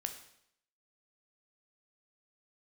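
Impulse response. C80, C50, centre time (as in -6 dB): 12.0 dB, 9.5 dB, 14 ms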